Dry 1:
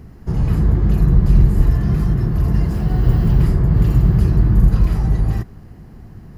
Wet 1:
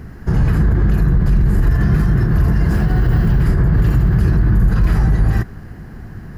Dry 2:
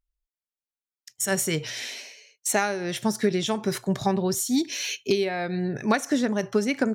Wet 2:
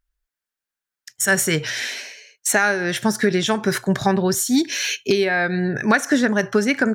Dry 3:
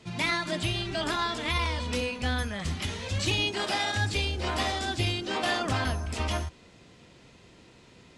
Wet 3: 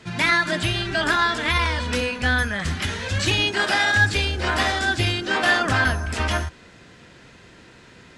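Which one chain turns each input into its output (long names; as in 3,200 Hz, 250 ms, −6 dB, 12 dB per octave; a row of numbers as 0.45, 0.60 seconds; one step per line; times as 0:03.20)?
parametric band 1,600 Hz +10 dB 0.53 octaves
brickwall limiter −12 dBFS
level +5.5 dB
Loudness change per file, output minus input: +1.0, +6.0, +8.0 LU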